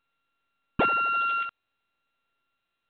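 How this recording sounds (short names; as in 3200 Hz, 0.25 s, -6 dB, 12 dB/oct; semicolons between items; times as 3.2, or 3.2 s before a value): a buzz of ramps at a fixed pitch in blocks of 32 samples; random-step tremolo; µ-law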